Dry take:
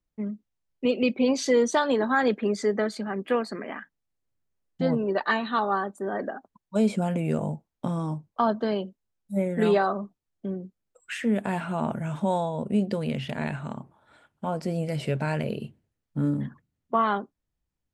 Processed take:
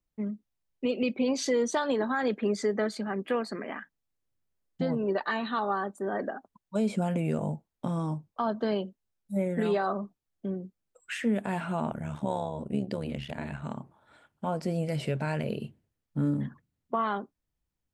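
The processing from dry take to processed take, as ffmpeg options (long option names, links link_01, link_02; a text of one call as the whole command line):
ffmpeg -i in.wav -filter_complex "[0:a]asplit=3[link_01][link_02][link_03];[link_01]afade=type=out:start_time=11.88:duration=0.02[link_04];[link_02]tremolo=f=72:d=0.788,afade=type=in:start_time=11.88:duration=0.02,afade=type=out:start_time=13.62:duration=0.02[link_05];[link_03]afade=type=in:start_time=13.62:duration=0.02[link_06];[link_04][link_05][link_06]amix=inputs=3:normalize=0,alimiter=limit=-17dB:level=0:latency=1:release=123,volume=-1.5dB" out.wav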